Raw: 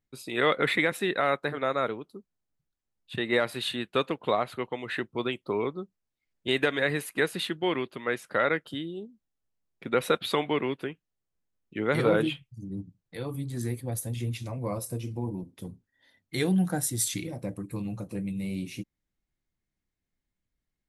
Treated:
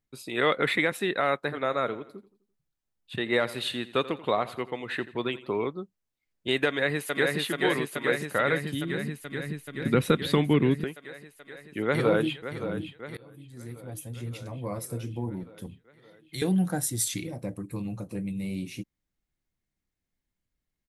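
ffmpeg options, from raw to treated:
ffmpeg -i in.wav -filter_complex "[0:a]asettb=1/sr,asplit=3[link_01][link_02][link_03];[link_01]atrim=end=1.434[link_04];[link_02]atrim=start=1.43:end=5.67,asetpts=PTS-STARTPTS,afade=type=in:duration=0.004:curve=qsin,afade=type=out:start_time=4.236:duration=0.004:curve=qsin,aecho=1:1:85|170|255|340:0.141|0.0622|0.0273|0.012,atrim=end_sample=186984[link_05];[link_03]atrim=start=5.666[link_06];[link_04][link_05]acrossfade=duration=0.004:curve1=hsin:curve2=qsin[link_07];[link_07][link_06]acrossfade=duration=0.004:curve1=qsin:curve2=hsin,asplit=2[link_08][link_09];[link_09]afade=type=in:start_time=6.66:duration=0.01,afade=type=out:start_time=7.37:duration=0.01,aecho=0:1:430|860|1290|1720|2150|2580|3010|3440|3870|4300|4730|5160:0.749894|0.599915|0.479932|0.383946|0.307157|0.245725|0.19658|0.157264|0.125811|0.100649|0.0805193|0.0644154[link_10];[link_08][link_10]amix=inputs=2:normalize=0,asettb=1/sr,asplit=3[link_11][link_12][link_13];[link_11]atrim=end=8.154[link_14];[link_12]atrim=start=8.15:end=10.84,asetpts=PTS-STARTPTS,afade=type=in:duration=0.004:curve=qsin,afade=type=out:start_time=2.686:duration=0.004:curve=qsin,asubboost=boost=10:cutoff=250[link_15];[link_13]atrim=start=10.836[link_16];[link_14][link_15]acrossfade=duration=0.004:curve1=hsin:curve2=qsin[link_17];[link_17][link_16]acrossfade=duration=0.004:curve1=qsin:curve2=hsin,asplit=2[link_18][link_19];[link_19]afade=type=in:start_time=11.85:duration=0.01,afade=type=out:start_time=12.43:duration=0.01,aecho=0:1:570|1140|1710|2280|2850|3420|3990|4560:0.298538|0.19405|0.126132|0.0819861|0.0532909|0.0346391|0.0225154|0.014635[link_20];[link_18][link_20]amix=inputs=2:normalize=0,asettb=1/sr,asplit=3[link_21][link_22][link_23];[link_21]atrim=end=15.664[link_24];[link_22]atrim=start=15.66:end=16.42,asetpts=PTS-STARTPTS,afade=type=in:duration=0.004:curve=qsin,afade=type=out:start_time=0.756:duration=0.004:curve=qsin,acrossover=split=150|3000[link_25][link_26][link_27];[link_26]acompressor=threshold=-48dB:ratio=2.5:attack=3.2:release=140:knee=2.83:detection=peak[link_28];[link_25][link_28][link_27]amix=inputs=3:normalize=0[link_29];[link_23]atrim=start=16.416[link_30];[link_24][link_29]acrossfade=duration=0.004:curve1=hsin:curve2=qsin[link_31];[link_31][link_30]acrossfade=duration=0.004:curve1=qsin:curve2=hsin,asplit=2[link_32][link_33];[link_32]atrim=end=13.17,asetpts=PTS-STARTPTS,afade=type=out:start_time=13.166:duration=0.004:curve=hsin:silence=0.0749894[link_34];[link_33]atrim=start=13.17,asetpts=PTS-STARTPTS,afade=type=in:duration=1.91:silence=0.0749894[link_35];[link_34][link_35]concat=n=2:v=0:a=1" out.wav

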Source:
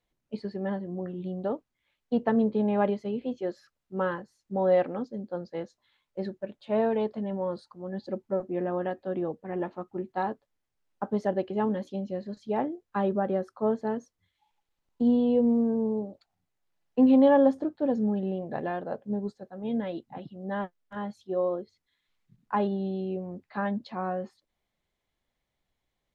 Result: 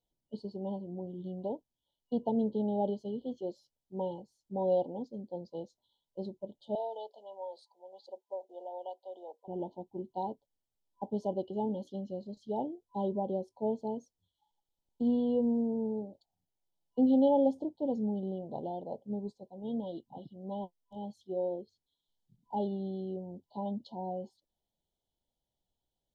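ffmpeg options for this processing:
ffmpeg -i in.wav -filter_complex "[0:a]asettb=1/sr,asplit=3[link_01][link_02][link_03];[link_01]atrim=end=6.754[link_04];[link_02]atrim=start=6.75:end=9.48,asetpts=PTS-STARTPTS,afade=type=in:duration=0.004:curve=qsin,afade=type=out:start_time=2.726:duration=0.004:curve=qsin,highpass=frequency=590:width=0.5412,highpass=frequency=590:width=1.3066[link_05];[link_03]atrim=start=9.476[link_06];[link_04][link_05]acrossfade=duration=0.004:curve1=hsin:curve2=qsin[link_07];[link_07][link_06]acrossfade=duration=0.004:curve1=qsin:curve2=hsin,afftfilt=real='re*(1-between(b*sr/4096,1000,2900))':imag='im*(1-between(b*sr/4096,1000,2900))':win_size=4096:overlap=0.75,volume=-6dB" out.wav

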